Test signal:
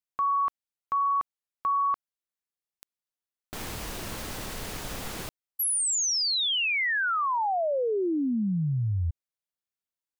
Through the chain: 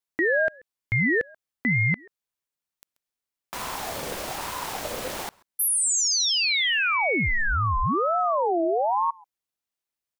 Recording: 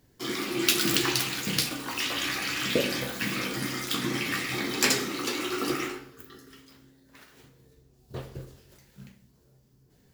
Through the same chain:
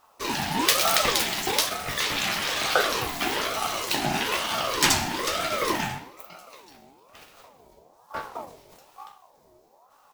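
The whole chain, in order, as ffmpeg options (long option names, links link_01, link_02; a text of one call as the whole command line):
ffmpeg -i in.wav -filter_complex "[0:a]acontrast=63,asplit=2[link_01][link_02];[link_02]adelay=134.1,volume=-26dB,highshelf=frequency=4000:gain=-3.02[link_03];[link_01][link_03]amix=inputs=2:normalize=0,aeval=exprs='val(0)*sin(2*PI*750*n/s+750*0.35/1.1*sin(2*PI*1.1*n/s))':channel_layout=same" out.wav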